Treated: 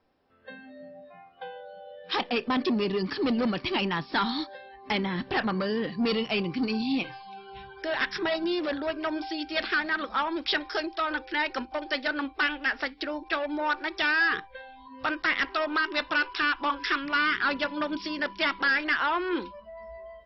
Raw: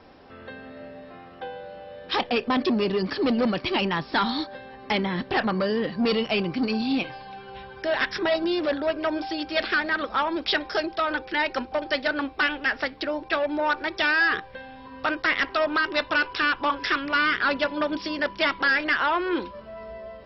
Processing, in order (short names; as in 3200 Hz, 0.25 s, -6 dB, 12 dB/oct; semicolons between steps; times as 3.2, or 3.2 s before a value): dynamic EQ 590 Hz, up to -4 dB, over -40 dBFS, Q 2.2; spectral noise reduction 18 dB; gain -2.5 dB